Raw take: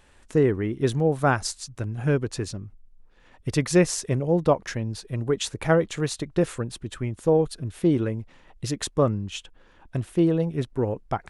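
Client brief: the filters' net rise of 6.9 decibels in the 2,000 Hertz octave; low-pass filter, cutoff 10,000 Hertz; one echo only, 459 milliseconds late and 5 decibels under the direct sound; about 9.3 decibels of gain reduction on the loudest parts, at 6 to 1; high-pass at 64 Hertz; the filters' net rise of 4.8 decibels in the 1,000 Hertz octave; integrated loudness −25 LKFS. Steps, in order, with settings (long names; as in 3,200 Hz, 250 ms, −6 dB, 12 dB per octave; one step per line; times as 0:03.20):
high-pass filter 64 Hz
low-pass filter 10,000 Hz
parametric band 1,000 Hz +4.5 dB
parametric band 2,000 Hz +7.5 dB
downward compressor 6 to 1, threshold −22 dBFS
single-tap delay 459 ms −5 dB
level +3.5 dB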